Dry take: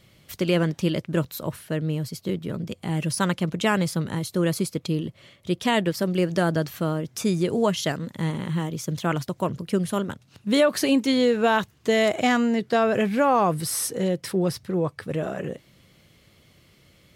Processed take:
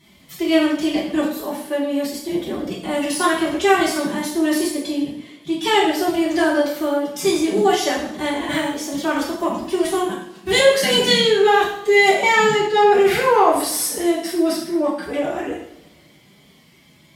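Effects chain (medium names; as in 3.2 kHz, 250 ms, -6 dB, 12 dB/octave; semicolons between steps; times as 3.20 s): formant-preserving pitch shift +10.5 st; two-slope reverb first 0.65 s, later 2.6 s, from -27 dB, DRR -5 dB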